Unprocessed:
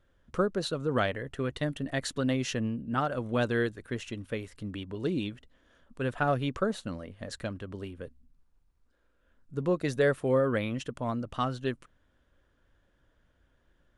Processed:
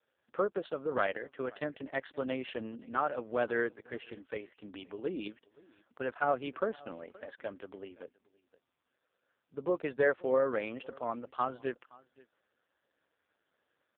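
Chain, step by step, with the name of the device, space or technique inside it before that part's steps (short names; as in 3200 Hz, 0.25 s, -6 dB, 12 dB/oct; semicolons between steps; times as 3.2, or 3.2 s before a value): 4.94–6.14 gate with hold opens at -58 dBFS; satellite phone (BPF 390–3200 Hz; echo 0.524 s -24 dB; AMR-NB 4.75 kbps 8000 Hz)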